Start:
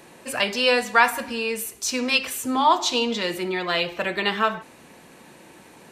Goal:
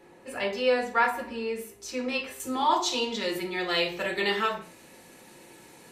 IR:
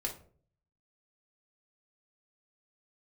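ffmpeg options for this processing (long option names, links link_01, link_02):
-filter_complex "[0:a]asetnsamples=nb_out_samples=441:pad=0,asendcmd='2.4 highshelf g 3;3.52 highshelf g 8',highshelf=frequency=3100:gain=-9.5[link_01];[1:a]atrim=start_sample=2205,atrim=end_sample=6174[link_02];[link_01][link_02]afir=irnorm=-1:irlink=0,volume=-7dB"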